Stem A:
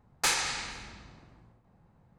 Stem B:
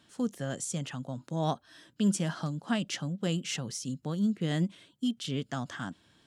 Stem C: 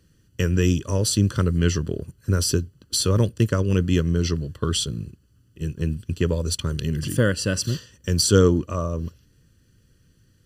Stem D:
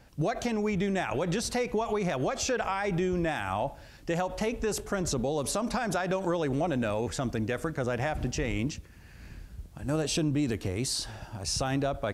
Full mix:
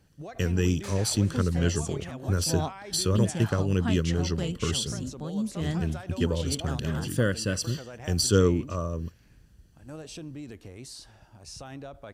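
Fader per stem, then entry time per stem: -17.0 dB, -2.0 dB, -5.0 dB, -12.5 dB; 0.60 s, 1.15 s, 0.00 s, 0.00 s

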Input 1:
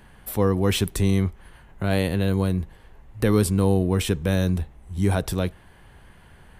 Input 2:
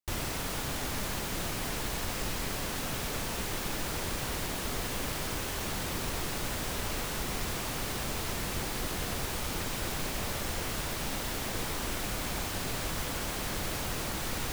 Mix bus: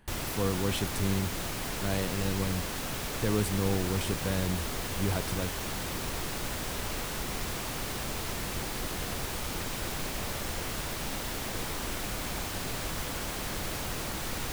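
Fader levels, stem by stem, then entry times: -9.5 dB, -0.5 dB; 0.00 s, 0.00 s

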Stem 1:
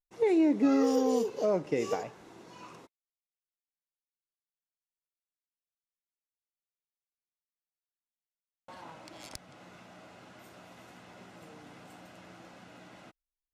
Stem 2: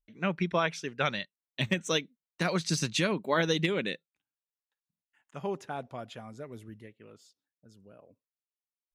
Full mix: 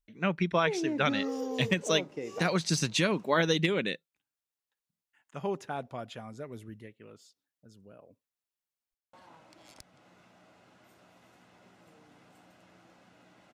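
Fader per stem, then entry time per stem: -8.0 dB, +1.0 dB; 0.45 s, 0.00 s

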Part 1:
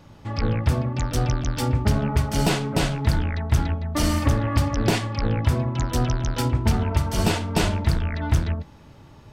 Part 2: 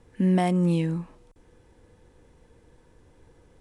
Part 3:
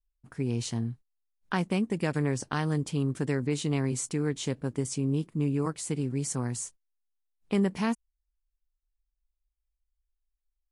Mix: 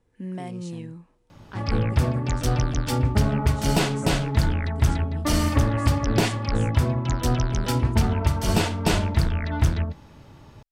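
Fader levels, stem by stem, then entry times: 0.0 dB, -12.0 dB, -11.0 dB; 1.30 s, 0.00 s, 0.00 s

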